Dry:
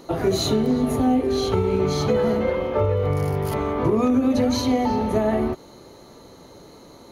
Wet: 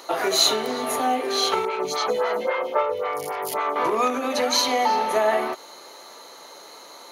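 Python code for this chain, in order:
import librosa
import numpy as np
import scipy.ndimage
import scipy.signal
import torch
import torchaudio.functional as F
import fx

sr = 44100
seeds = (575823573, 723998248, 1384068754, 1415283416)

y = scipy.signal.sosfilt(scipy.signal.butter(2, 830.0, 'highpass', fs=sr, output='sos'), x)
y = fx.stagger_phaser(y, sr, hz=3.7, at=(1.65, 3.76))
y = y * librosa.db_to_amplitude(8.5)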